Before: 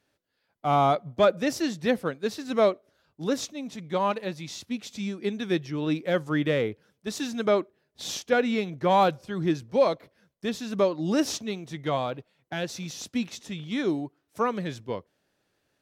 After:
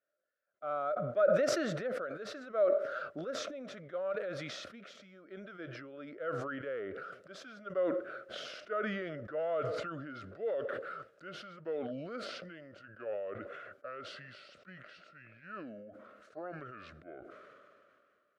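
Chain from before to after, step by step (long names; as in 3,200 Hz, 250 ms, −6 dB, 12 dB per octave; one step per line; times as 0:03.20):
gliding playback speed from 104% → 68%
pair of resonant band-passes 900 Hz, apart 1.2 octaves
level that may fall only so fast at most 25 dB per second
level −5 dB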